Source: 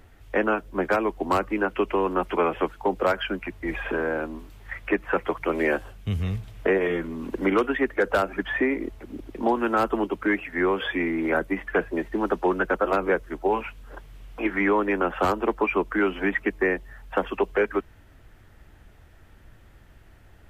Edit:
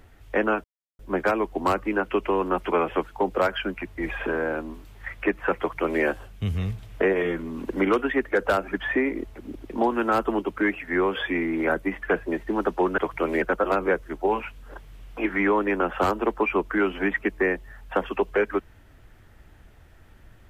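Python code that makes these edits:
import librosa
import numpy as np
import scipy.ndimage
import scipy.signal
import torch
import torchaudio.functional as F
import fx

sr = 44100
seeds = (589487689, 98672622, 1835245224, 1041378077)

y = fx.edit(x, sr, fx.insert_silence(at_s=0.64, length_s=0.35),
    fx.duplicate(start_s=5.24, length_s=0.44, to_s=12.63), tone=tone)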